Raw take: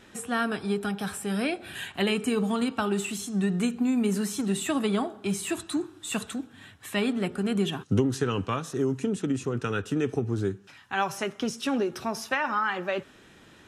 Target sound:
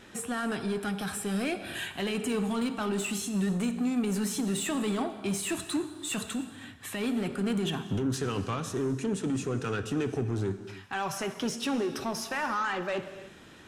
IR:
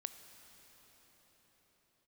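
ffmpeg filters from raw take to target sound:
-filter_complex "[0:a]alimiter=limit=-21dB:level=0:latency=1:release=14,aeval=exprs='0.0891*(cos(1*acos(clip(val(0)/0.0891,-1,1)))-cos(1*PI/2))+0.00708*(cos(5*acos(clip(val(0)/0.0891,-1,1)))-cos(5*PI/2))':c=same[a];[1:a]atrim=start_sample=2205,afade=t=out:st=0.38:d=0.01,atrim=end_sample=17199[b];[a][b]afir=irnorm=-1:irlink=0,volume=2dB"

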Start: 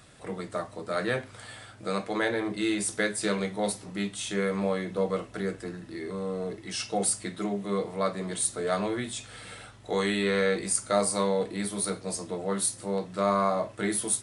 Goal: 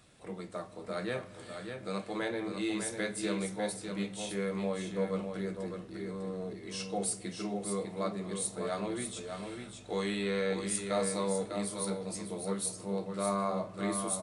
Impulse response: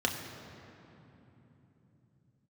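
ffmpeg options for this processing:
-filter_complex "[0:a]aecho=1:1:600:0.473,asplit=2[a][b];[1:a]atrim=start_sample=2205,asetrate=31752,aresample=44100[c];[b][c]afir=irnorm=-1:irlink=0,volume=-22dB[d];[a][d]amix=inputs=2:normalize=0,volume=-8dB"

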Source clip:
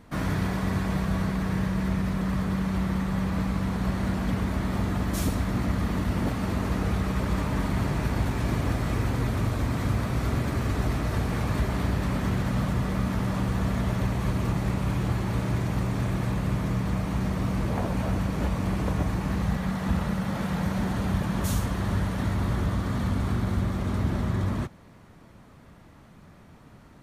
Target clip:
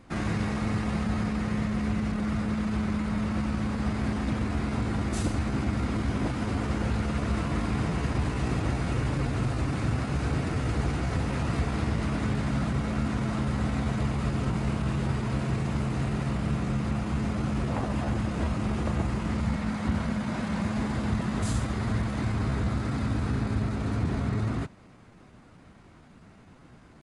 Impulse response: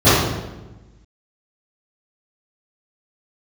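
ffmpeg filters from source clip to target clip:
-af "asetrate=49501,aresample=44100,atempo=0.890899,aresample=22050,aresample=44100,volume=-1.5dB"

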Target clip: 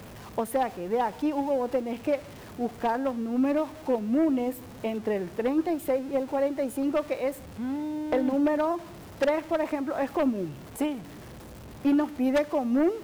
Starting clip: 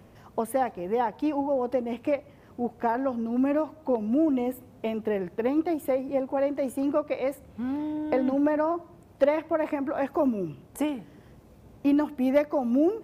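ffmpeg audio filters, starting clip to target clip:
-af "aeval=exprs='val(0)+0.5*0.015*sgn(val(0))':c=same,aeval=exprs='0.266*(cos(1*acos(clip(val(0)/0.266,-1,1)))-cos(1*PI/2))+0.075*(cos(5*acos(clip(val(0)/0.266,-1,1)))-cos(5*PI/2))+0.0531*(cos(7*acos(clip(val(0)/0.266,-1,1)))-cos(7*PI/2))':c=same,volume=-4dB"

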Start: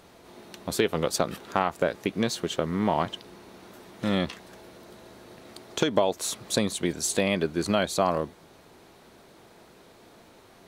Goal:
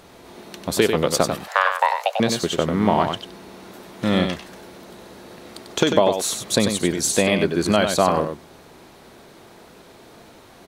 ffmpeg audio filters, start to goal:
-filter_complex "[0:a]asettb=1/sr,asplit=3[a][b][c];[a]atrim=end=1.384[d];[b]atrim=start=1.38:end=2.2,asetpts=PTS-STARTPTS,afade=t=in:d=0.004:c=qsin,afade=t=out:st=0.816:d=0.004:c=qsin,afreqshift=380[e];[c]atrim=start=2.196[f];[d][e]acrossfade=d=0.004:c1=hsin:c2=qsin[g];[g][f]acrossfade=d=0.004:c1=qsin:c2=hsin,aecho=1:1:95:0.473,volume=6dB"

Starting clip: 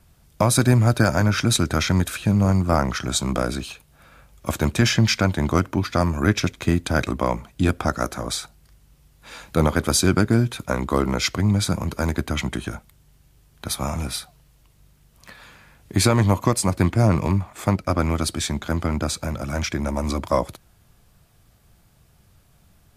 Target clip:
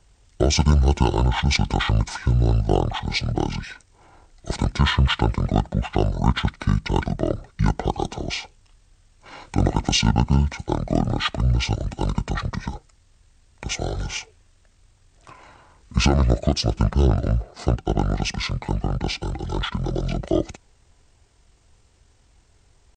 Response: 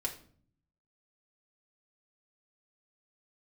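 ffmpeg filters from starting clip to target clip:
-af "asetrate=26222,aresample=44100,atempo=1.68179"

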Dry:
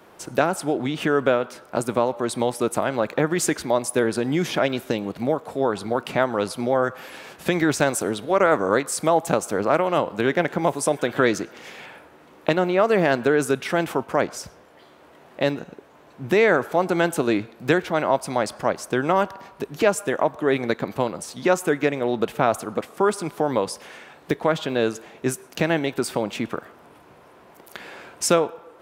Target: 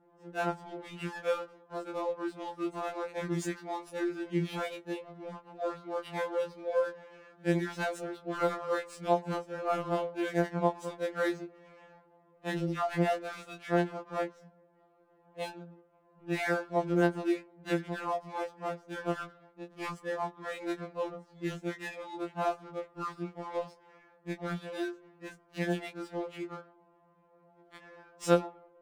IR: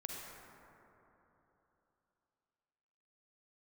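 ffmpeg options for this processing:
-af "afftfilt=real='re':imag='-im':win_size=2048:overlap=0.75,adynamicsmooth=sensitivity=7.5:basefreq=770,afftfilt=real='re*2.83*eq(mod(b,8),0)':imag='im*2.83*eq(mod(b,8),0)':win_size=2048:overlap=0.75,volume=-7.5dB"

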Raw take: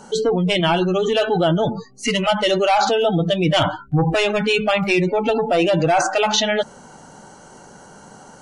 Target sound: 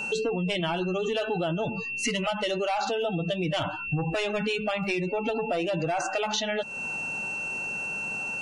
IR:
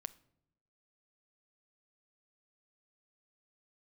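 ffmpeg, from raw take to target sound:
-af "aeval=exprs='val(0)+0.0316*sin(2*PI*2700*n/s)':c=same,acompressor=threshold=-26dB:ratio=6"

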